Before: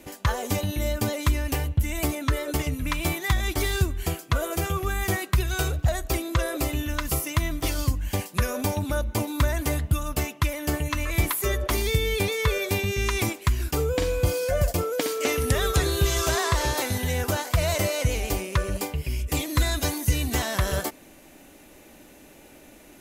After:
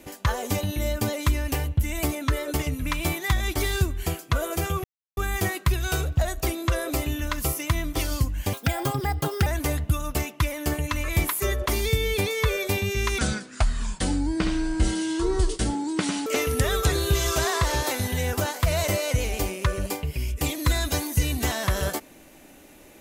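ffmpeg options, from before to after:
-filter_complex "[0:a]asplit=6[a][b][c][d][e][f];[a]atrim=end=4.84,asetpts=PTS-STARTPTS,afade=t=out:st=4.836:d=0.004:c=hsin,apad=pad_dur=0.33[g];[b]atrim=start=4.84:end=8.204,asetpts=PTS-STARTPTS,afade=t=in:d=0.004:c=hsin[h];[c]atrim=start=8.2:end=9.48,asetpts=PTS-STARTPTS,asetrate=60417,aresample=44100[i];[d]atrim=start=9.476:end=13.204[j];[e]atrim=start=13.2:end=15.17,asetpts=PTS-STARTPTS,asetrate=28224,aresample=44100,atrim=end_sample=135745,asetpts=PTS-STARTPTS[k];[f]atrim=start=15.166[l];[g][h]concat=n=2:v=0:a=1[m];[m][i]acrossfade=d=0.004:c1=hsin:c2=hsin[n];[n][j]acrossfade=d=0.004:c1=hsin:c2=hsin[o];[o][k]acrossfade=d=0.004:c1=hsin:c2=hsin[p];[p][l]acrossfade=d=0.004:c1=hsin:c2=hsin"

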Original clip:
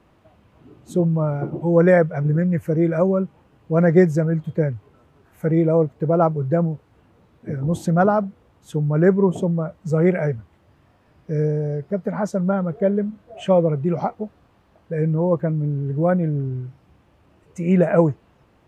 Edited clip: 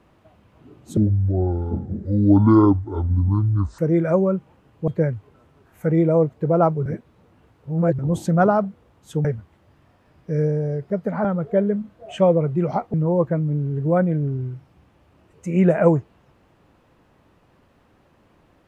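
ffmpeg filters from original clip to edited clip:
-filter_complex "[0:a]asplit=9[a][b][c][d][e][f][g][h][i];[a]atrim=end=0.974[j];[b]atrim=start=0.97:end=2.66,asetpts=PTS-STARTPTS,asetrate=26460,aresample=44100[k];[c]atrim=start=2.656:end=3.752[l];[d]atrim=start=4.468:end=6.452[m];[e]atrim=start=6.448:end=7.582,asetpts=PTS-STARTPTS,areverse[n];[f]atrim=start=7.578:end=8.842[o];[g]atrim=start=10.248:end=12.252[p];[h]atrim=start=12.528:end=14.222[q];[i]atrim=start=15.058[r];[j][k]acrossfade=d=0.004:c1=hsin:c2=hsin[s];[s][l]acrossfade=d=0.004:c1=hsin:c2=hsin[t];[t][m]acrossfade=d=0.004:c1=hsin:c2=hsin[u];[u][n]acrossfade=d=0.004:c1=hsin:c2=hsin[v];[v][o]acrossfade=d=0.004:c1=hsin:c2=hsin[w];[w][p]acrossfade=d=0.004:c1=hsin:c2=hsin[x];[x][q]acrossfade=d=0.004:c1=hsin:c2=hsin[y];[y][r]acrossfade=d=0.004:c1=hsin:c2=hsin"

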